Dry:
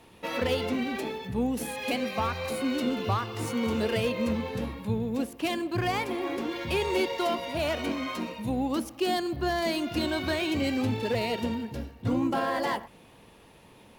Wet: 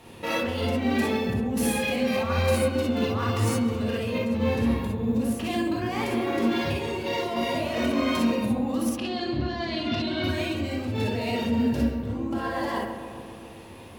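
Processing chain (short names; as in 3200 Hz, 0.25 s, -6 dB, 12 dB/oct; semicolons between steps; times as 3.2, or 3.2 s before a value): 8.91–10.24 EQ curve 930 Hz 0 dB, 4200 Hz +6 dB, 11000 Hz -24 dB; negative-ratio compressor -33 dBFS, ratio -1; darkening echo 0.136 s, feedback 77%, low-pass 1900 Hz, level -9 dB; non-linear reverb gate 80 ms rising, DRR -2 dB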